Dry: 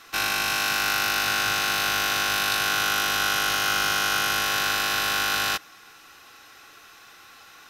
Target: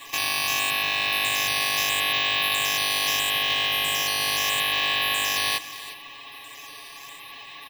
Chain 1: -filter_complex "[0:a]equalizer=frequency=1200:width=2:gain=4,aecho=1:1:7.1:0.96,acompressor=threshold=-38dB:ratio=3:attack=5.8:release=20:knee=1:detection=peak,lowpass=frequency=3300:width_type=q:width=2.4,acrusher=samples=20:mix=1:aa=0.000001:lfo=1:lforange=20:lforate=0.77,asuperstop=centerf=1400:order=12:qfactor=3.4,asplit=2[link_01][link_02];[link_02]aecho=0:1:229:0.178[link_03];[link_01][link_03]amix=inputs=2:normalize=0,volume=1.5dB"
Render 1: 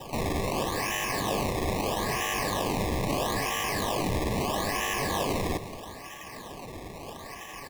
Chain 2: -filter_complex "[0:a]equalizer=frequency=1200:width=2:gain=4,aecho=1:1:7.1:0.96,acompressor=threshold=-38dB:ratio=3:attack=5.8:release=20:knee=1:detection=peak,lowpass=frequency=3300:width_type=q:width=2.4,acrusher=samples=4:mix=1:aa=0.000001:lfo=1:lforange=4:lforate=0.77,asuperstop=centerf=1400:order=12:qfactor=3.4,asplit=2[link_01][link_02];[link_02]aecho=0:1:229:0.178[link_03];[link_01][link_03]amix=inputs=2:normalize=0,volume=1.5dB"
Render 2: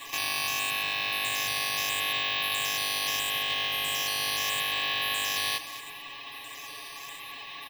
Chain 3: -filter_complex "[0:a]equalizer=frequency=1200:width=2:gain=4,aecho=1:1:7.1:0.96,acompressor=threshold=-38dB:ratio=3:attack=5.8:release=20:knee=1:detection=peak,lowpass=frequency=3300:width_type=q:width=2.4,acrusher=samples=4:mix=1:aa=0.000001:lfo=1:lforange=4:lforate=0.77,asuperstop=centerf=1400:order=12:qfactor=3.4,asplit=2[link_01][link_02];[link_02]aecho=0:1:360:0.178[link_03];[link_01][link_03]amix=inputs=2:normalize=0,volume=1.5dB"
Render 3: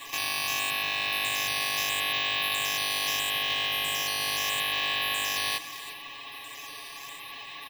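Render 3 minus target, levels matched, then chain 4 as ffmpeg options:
downward compressor: peak gain reduction +4.5 dB
-filter_complex "[0:a]equalizer=frequency=1200:width=2:gain=4,aecho=1:1:7.1:0.96,acompressor=threshold=-31dB:ratio=3:attack=5.8:release=20:knee=1:detection=peak,lowpass=frequency=3300:width_type=q:width=2.4,acrusher=samples=4:mix=1:aa=0.000001:lfo=1:lforange=4:lforate=0.77,asuperstop=centerf=1400:order=12:qfactor=3.4,asplit=2[link_01][link_02];[link_02]aecho=0:1:360:0.178[link_03];[link_01][link_03]amix=inputs=2:normalize=0,volume=1.5dB"

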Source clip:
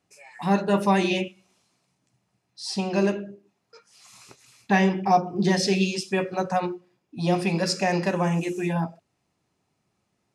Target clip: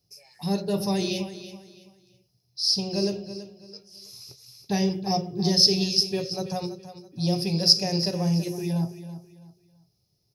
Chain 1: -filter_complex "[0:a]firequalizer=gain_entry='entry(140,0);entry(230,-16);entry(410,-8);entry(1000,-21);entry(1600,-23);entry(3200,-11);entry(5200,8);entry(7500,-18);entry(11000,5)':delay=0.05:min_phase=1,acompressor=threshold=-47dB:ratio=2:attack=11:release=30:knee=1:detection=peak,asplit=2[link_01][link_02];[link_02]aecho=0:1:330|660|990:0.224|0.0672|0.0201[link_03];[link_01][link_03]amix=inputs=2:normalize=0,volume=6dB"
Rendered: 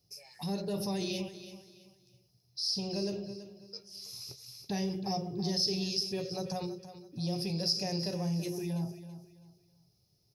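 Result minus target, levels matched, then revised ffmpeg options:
downward compressor: peak gain reduction +15 dB
-filter_complex "[0:a]firequalizer=gain_entry='entry(140,0);entry(230,-16);entry(410,-8);entry(1000,-21);entry(1600,-23);entry(3200,-11);entry(5200,8);entry(7500,-18);entry(11000,5)':delay=0.05:min_phase=1,asplit=2[link_01][link_02];[link_02]aecho=0:1:330|660|990:0.224|0.0672|0.0201[link_03];[link_01][link_03]amix=inputs=2:normalize=0,volume=6dB"

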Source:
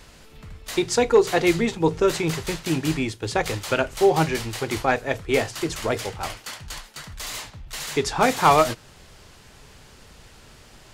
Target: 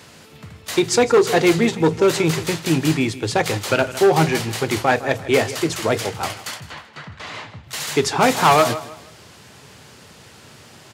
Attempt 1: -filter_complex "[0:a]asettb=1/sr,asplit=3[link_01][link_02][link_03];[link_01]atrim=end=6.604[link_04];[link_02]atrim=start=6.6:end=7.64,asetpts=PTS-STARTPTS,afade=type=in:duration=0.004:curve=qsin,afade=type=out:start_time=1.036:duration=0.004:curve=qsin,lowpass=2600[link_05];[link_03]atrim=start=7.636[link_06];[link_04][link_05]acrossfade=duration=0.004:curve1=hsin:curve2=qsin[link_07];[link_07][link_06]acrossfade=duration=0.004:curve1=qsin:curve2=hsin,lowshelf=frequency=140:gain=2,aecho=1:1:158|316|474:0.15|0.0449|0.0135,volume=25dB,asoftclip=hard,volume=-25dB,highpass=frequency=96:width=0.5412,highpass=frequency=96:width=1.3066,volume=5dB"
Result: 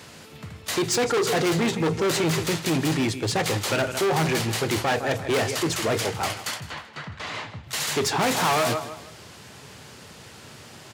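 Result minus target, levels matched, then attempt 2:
gain into a clipping stage and back: distortion +9 dB
-filter_complex "[0:a]asettb=1/sr,asplit=3[link_01][link_02][link_03];[link_01]atrim=end=6.604[link_04];[link_02]atrim=start=6.6:end=7.64,asetpts=PTS-STARTPTS,afade=type=in:duration=0.004:curve=qsin,afade=type=out:start_time=1.036:duration=0.004:curve=qsin,lowpass=2600[link_05];[link_03]atrim=start=7.636[link_06];[link_04][link_05]acrossfade=duration=0.004:curve1=hsin:curve2=qsin[link_07];[link_07][link_06]acrossfade=duration=0.004:curve1=qsin:curve2=hsin,lowshelf=frequency=140:gain=2,aecho=1:1:158|316|474:0.15|0.0449|0.0135,volume=14dB,asoftclip=hard,volume=-14dB,highpass=frequency=96:width=0.5412,highpass=frequency=96:width=1.3066,volume=5dB"

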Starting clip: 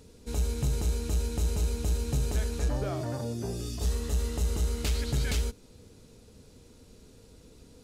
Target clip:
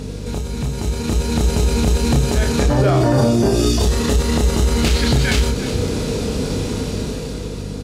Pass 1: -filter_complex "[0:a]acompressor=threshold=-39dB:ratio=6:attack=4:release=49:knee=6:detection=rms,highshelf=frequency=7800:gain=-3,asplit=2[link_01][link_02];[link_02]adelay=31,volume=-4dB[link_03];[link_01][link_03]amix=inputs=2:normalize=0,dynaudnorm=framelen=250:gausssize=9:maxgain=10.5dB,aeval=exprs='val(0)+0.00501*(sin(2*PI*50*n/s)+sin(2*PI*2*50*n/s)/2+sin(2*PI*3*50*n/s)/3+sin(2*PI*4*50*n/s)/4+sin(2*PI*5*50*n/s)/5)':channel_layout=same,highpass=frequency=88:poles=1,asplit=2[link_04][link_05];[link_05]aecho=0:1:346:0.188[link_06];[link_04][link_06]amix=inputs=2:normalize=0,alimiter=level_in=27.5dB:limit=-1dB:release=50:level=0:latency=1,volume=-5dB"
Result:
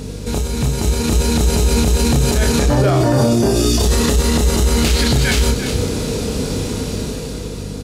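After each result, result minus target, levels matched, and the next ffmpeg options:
downward compressor: peak gain reduction −5 dB; 8,000 Hz band +3.5 dB
-filter_complex "[0:a]acompressor=threshold=-45dB:ratio=6:attack=4:release=49:knee=6:detection=rms,highshelf=frequency=7800:gain=-3,asplit=2[link_01][link_02];[link_02]adelay=31,volume=-4dB[link_03];[link_01][link_03]amix=inputs=2:normalize=0,dynaudnorm=framelen=250:gausssize=9:maxgain=10.5dB,aeval=exprs='val(0)+0.00501*(sin(2*PI*50*n/s)+sin(2*PI*2*50*n/s)/2+sin(2*PI*3*50*n/s)/3+sin(2*PI*4*50*n/s)/4+sin(2*PI*5*50*n/s)/5)':channel_layout=same,highpass=frequency=88:poles=1,asplit=2[link_04][link_05];[link_05]aecho=0:1:346:0.188[link_06];[link_04][link_06]amix=inputs=2:normalize=0,alimiter=level_in=27.5dB:limit=-1dB:release=50:level=0:latency=1,volume=-5dB"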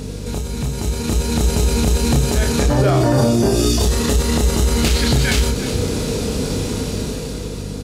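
8,000 Hz band +3.0 dB
-filter_complex "[0:a]acompressor=threshold=-45dB:ratio=6:attack=4:release=49:knee=6:detection=rms,highshelf=frequency=7800:gain=-10.5,asplit=2[link_01][link_02];[link_02]adelay=31,volume=-4dB[link_03];[link_01][link_03]amix=inputs=2:normalize=0,dynaudnorm=framelen=250:gausssize=9:maxgain=10.5dB,aeval=exprs='val(0)+0.00501*(sin(2*PI*50*n/s)+sin(2*PI*2*50*n/s)/2+sin(2*PI*3*50*n/s)/3+sin(2*PI*4*50*n/s)/4+sin(2*PI*5*50*n/s)/5)':channel_layout=same,highpass=frequency=88:poles=1,asplit=2[link_04][link_05];[link_05]aecho=0:1:346:0.188[link_06];[link_04][link_06]amix=inputs=2:normalize=0,alimiter=level_in=27.5dB:limit=-1dB:release=50:level=0:latency=1,volume=-5dB"

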